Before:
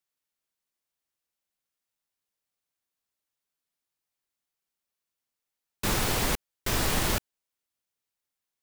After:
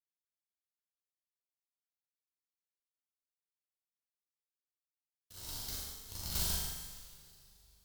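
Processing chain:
sub-harmonics by changed cycles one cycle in 2, muted
noise gate −24 dBFS, range −27 dB
graphic EQ with 10 bands 125 Hz −5 dB, 250 Hz −10 dB, 500 Hz −6 dB, 1,000 Hz −6 dB, 2,000 Hz −11 dB, 4,000 Hz +7 dB, 16,000 Hz +6 dB
change of speed 1.1×
flutter between parallel walls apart 7.1 metres, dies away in 0.9 s
coupled-rooms reverb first 0.64 s, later 3.5 s, from −18 dB, DRR −4 dB
feedback echo at a low word length 143 ms, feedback 55%, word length 9 bits, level −11 dB

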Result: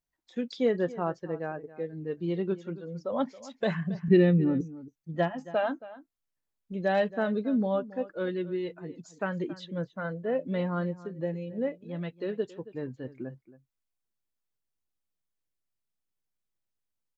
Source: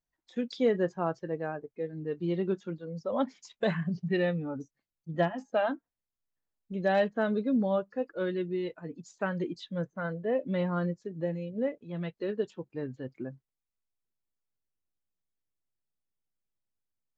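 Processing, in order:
0:04.08–0:04.61: low shelf with overshoot 460 Hz +9 dB, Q 1.5
slap from a distant wall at 47 metres, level −17 dB

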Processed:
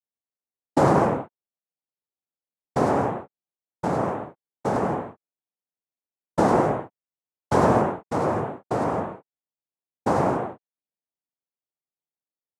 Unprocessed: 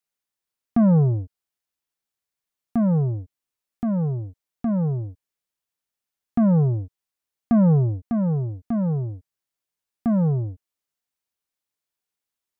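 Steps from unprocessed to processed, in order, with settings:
adaptive Wiener filter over 41 samples
Chebyshev low-pass with heavy ripple 1,000 Hz, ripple 3 dB
cochlear-implant simulation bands 2
level −1 dB

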